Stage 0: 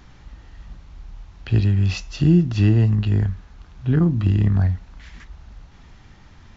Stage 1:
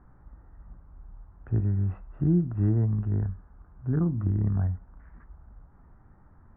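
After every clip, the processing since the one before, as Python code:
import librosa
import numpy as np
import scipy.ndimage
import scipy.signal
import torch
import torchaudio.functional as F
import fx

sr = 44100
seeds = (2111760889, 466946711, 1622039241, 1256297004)

y = scipy.signal.sosfilt(scipy.signal.butter(6, 1500.0, 'lowpass', fs=sr, output='sos'), x)
y = y * 10.0 ** (-8.0 / 20.0)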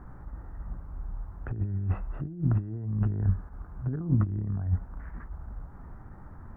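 y = fx.over_compress(x, sr, threshold_db=-30.0, ratio=-0.5)
y = fx.attack_slew(y, sr, db_per_s=220.0)
y = y * 10.0 ** (4.0 / 20.0)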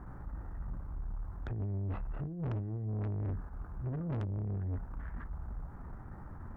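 y = fx.tube_stage(x, sr, drive_db=34.0, bias=0.3)
y = y * 10.0 ** (1.0 / 20.0)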